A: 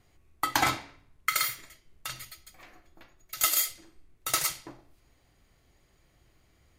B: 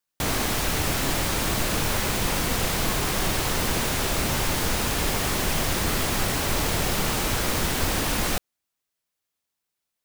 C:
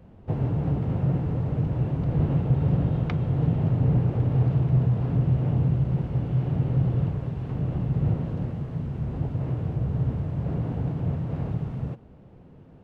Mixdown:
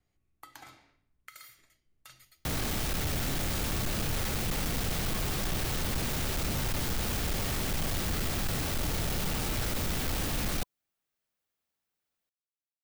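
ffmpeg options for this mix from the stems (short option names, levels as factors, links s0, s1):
-filter_complex "[0:a]acompressor=threshold=0.0316:ratio=12,aeval=exprs='val(0)+0.000447*(sin(2*PI*60*n/s)+sin(2*PI*2*60*n/s)/2+sin(2*PI*3*60*n/s)/3+sin(2*PI*4*60*n/s)/4+sin(2*PI*5*60*n/s)/5)':c=same,volume=0.178[s0];[1:a]equalizer=f=8400:t=o:w=2.6:g=-6.5,asoftclip=type=hard:threshold=0.0473,adelay=2250,volume=1[s1];[s0][s1]amix=inputs=2:normalize=0,bandreject=f=1000:w=13,acrossover=split=220|3000[s2][s3][s4];[s3]acompressor=threshold=0.00447:ratio=1.5[s5];[s2][s5][s4]amix=inputs=3:normalize=0"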